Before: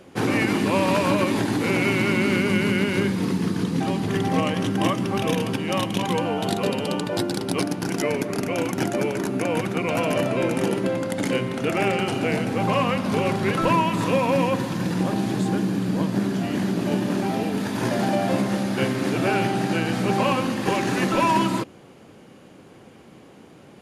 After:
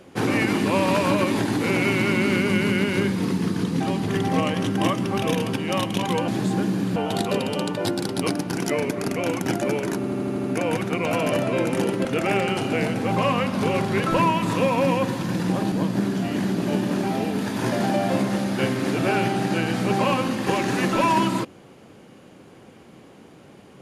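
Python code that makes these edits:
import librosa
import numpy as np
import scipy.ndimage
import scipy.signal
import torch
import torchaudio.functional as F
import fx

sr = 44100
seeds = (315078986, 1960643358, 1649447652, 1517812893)

y = fx.edit(x, sr, fx.stutter(start_s=9.28, slice_s=0.08, count=7),
    fx.cut(start_s=10.89, length_s=0.67),
    fx.move(start_s=15.23, length_s=0.68, to_s=6.28), tone=tone)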